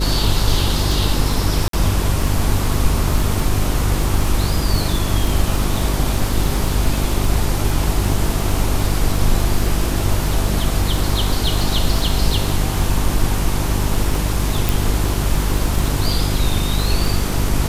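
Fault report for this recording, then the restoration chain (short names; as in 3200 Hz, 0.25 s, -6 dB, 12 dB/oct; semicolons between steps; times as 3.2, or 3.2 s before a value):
crackle 33/s -20 dBFS
hum 50 Hz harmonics 8 -21 dBFS
1.68–1.73 gap 53 ms
14.69 pop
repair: de-click; de-hum 50 Hz, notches 8; interpolate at 1.68, 53 ms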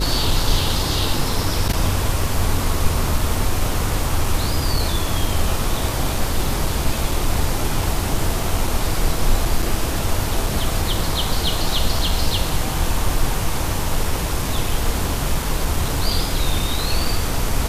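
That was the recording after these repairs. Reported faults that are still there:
none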